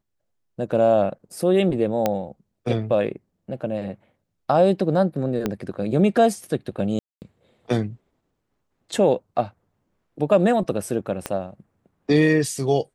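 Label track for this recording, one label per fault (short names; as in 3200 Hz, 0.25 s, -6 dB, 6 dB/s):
2.060000	2.060000	pop -7 dBFS
5.460000	5.460000	pop -10 dBFS
6.990000	7.220000	gap 0.229 s
11.260000	11.260000	pop -11 dBFS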